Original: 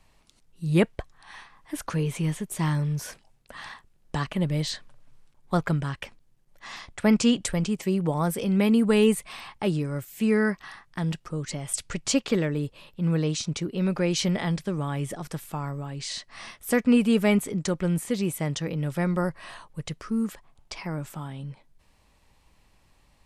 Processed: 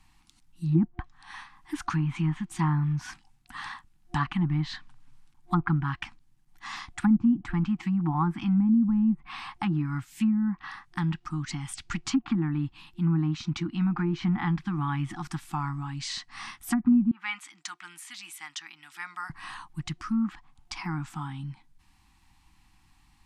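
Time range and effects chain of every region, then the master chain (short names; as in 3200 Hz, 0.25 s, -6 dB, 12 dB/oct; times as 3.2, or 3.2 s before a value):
17.11–19.3 Bessel high-pass 1800 Hz + high shelf 7800 Hz -11 dB
whole clip: treble ducked by the level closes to 340 Hz, closed at -17.5 dBFS; FFT band-reject 350–720 Hz; dynamic EQ 1200 Hz, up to +5 dB, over -50 dBFS, Q 1.5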